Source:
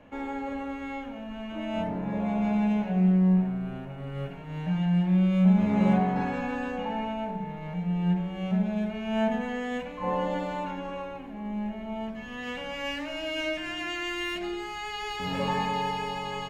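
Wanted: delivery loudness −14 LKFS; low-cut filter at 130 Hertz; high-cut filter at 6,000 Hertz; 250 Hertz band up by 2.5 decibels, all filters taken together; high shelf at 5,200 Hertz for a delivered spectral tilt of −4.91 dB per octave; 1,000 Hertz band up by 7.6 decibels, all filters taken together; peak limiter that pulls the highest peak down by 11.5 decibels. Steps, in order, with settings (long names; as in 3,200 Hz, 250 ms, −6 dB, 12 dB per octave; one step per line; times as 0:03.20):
high-pass filter 130 Hz
low-pass filter 6,000 Hz
parametric band 250 Hz +4.5 dB
parametric band 1,000 Hz +9 dB
high-shelf EQ 5,200 Hz +7.5 dB
level +14.5 dB
brickwall limiter −5 dBFS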